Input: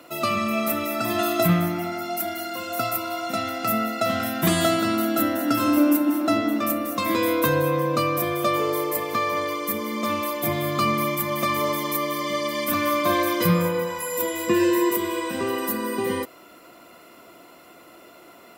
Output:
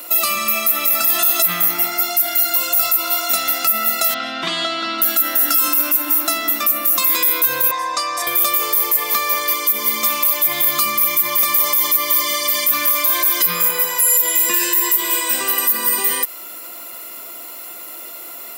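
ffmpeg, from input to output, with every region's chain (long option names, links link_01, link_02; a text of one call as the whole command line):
ffmpeg -i in.wav -filter_complex "[0:a]asettb=1/sr,asplit=3[link_01][link_02][link_03];[link_01]atrim=end=4.144[link_04];[link_02]atrim=start=4.14:end=5.02,asetpts=PTS-STARTPTS,afade=type=in:duration=0.004:curve=qsin,afade=type=out:start_time=0.876:duration=0.004:curve=qsin,acrusher=bits=6:mix=0:aa=0.5,highpass=frequency=130:width=0.5412,highpass=frequency=130:width=1.3066,equalizer=frequency=280:width_type=q:width=4:gain=5,equalizer=frequency=1700:width_type=q:width=4:gain=-6,equalizer=frequency=2500:width_type=q:width=4:gain=-3,lowpass=frequency=4000:width=0.5412,lowpass=frequency=4000:width=1.3066[link_05];[link_03]atrim=start=5.016[link_06];[link_04][link_05]acrossfade=duration=0.004:curve1=hsin:curve2=qsin[link_07];[link_07][link_06]acrossfade=duration=0.004:curve1=qsin:curve2=hsin,asettb=1/sr,asplit=3[link_08][link_09][link_10];[link_08]atrim=end=7.714[link_11];[link_09]atrim=start=7.71:end=8.27,asetpts=PTS-STARTPTS,afade=type=in:duration=0.004:curve=qsin,afade=type=out:start_time=0.556:duration=0.004:curve=qsin,aecho=1:1:1.1:0.61,atrim=end_sample=24696,asoftclip=type=hard:threshold=-14.5dB,highpass=480,equalizer=frequency=850:width_type=q:width=4:gain=6,equalizer=frequency=1300:width_type=q:width=4:gain=-4,equalizer=frequency=2900:width_type=q:width=4:gain=-10,lowpass=frequency=7200:width=0.5412,lowpass=frequency=7200:width=1.3066[link_12];[link_10]atrim=start=8.266[link_13];[link_11][link_12]acrossfade=duration=0.004:curve1=hsin:curve2=qsin[link_14];[link_14][link_13]acrossfade=duration=0.004:curve1=qsin:curve2=hsin,aemphasis=mode=production:type=riaa,acrossover=split=920|6900[link_15][link_16][link_17];[link_15]acompressor=threshold=-39dB:ratio=4[link_18];[link_16]acompressor=threshold=-27dB:ratio=4[link_19];[link_17]acompressor=threshold=-12dB:ratio=4[link_20];[link_18][link_19][link_20]amix=inputs=3:normalize=0,alimiter=level_in=10.5dB:limit=-1dB:release=50:level=0:latency=1,volume=-3.5dB" out.wav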